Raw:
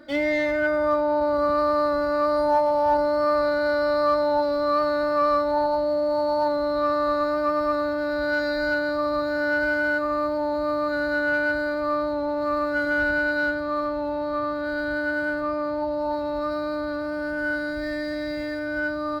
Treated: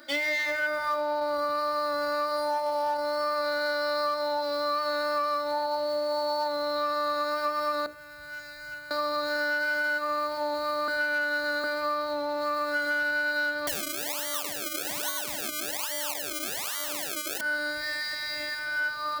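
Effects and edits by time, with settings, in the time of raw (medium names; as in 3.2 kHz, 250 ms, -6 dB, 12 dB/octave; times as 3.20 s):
7.86–8.91 s: FFT filter 150 Hz 0 dB, 210 Hz -17 dB, 380 Hz -26 dB, 2.6 kHz -11 dB, 4.3 kHz -22 dB, 6.8 kHz -10 dB
10.88–11.64 s: reverse
13.67–17.41 s: decimation with a swept rate 33× 1.2 Hz
whole clip: tilt EQ +4 dB/octave; hum notches 60/120/180/240/300/360/420/480/540/600 Hz; compression, threshold -25 dBFS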